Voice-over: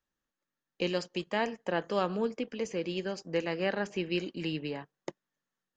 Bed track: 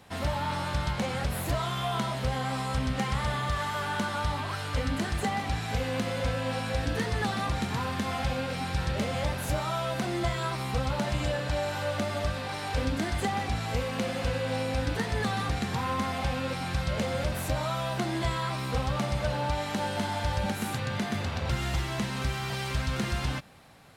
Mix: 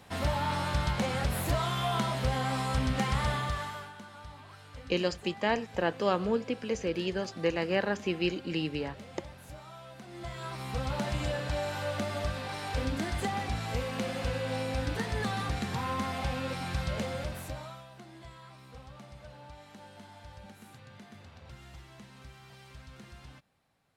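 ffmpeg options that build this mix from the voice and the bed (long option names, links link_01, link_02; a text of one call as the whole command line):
ffmpeg -i stem1.wav -i stem2.wav -filter_complex "[0:a]adelay=4100,volume=2dB[link_01];[1:a]volume=14.5dB,afade=type=out:start_time=3.27:duration=0.66:silence=0.133352,afade=type=in:start_time=10.07:duration=0.9:silence=0.188365,afade=type=out:start_time=16.87:duration=1:silence=0.141254[link_02];[link_01][link_02]amix=inputs=2:normalize=0" out.wav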